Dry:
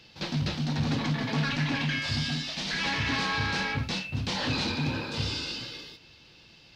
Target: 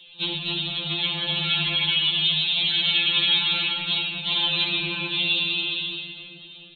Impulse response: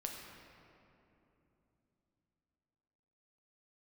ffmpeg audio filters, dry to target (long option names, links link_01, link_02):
-filter_complex "[0:a]aeval=exprs='val(0)+0.5*0.01*sgn(val(0))':channel_layout=same,acrossover=split=2000[link_01][link_02];[link_02]aexciter=amount=11:drive=8.4:freq=2700[link_03];[link_01][link_03]amix=inputs=2:normalize=0,aresample=8000,aresample=44100,agate=range=-11dB:threshold=-25dB:ratio=16:detection=peak[link_04];[1:a]atrim=start_sample=2205[link_05];[link_04][link_05]afir=irnorm=-1:irlink=0,afftfilt=real='re*2.83*eq(mod(b,8),0)':imag='im*2.83*eq(mod(b,8),0)':win_size=2048:overlap=0.75"